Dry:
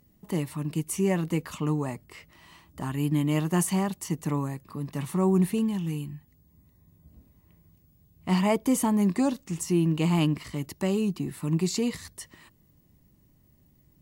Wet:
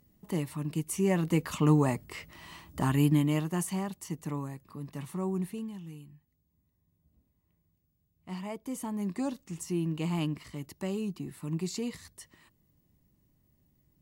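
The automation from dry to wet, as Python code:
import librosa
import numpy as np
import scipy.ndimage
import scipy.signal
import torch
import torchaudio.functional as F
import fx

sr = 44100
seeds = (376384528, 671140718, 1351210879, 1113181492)

y = fx.gain(x, sr, db=fx.line((0.97, -3.0), (1.74, 4.5), (2.95, 4.5), (3.55, -7.0), (4.93, -7.0), (6.05, -15.0), (8.55, -15.0), (9.28, -7.5)))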